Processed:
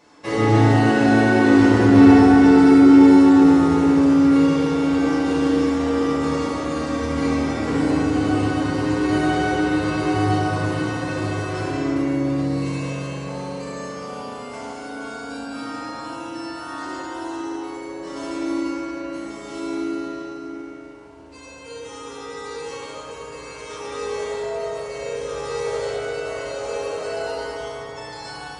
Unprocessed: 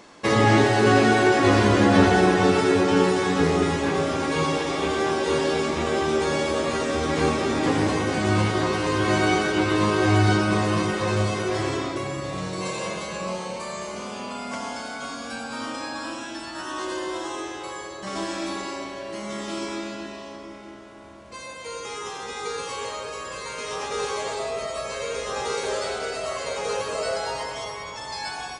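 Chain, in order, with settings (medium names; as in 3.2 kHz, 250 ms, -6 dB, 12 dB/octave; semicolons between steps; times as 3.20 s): FDN reverb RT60 3.2 s, low-frequency decay 1.2×, high-frequency decay 0.35×, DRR -8.5 dB; trim -10 dB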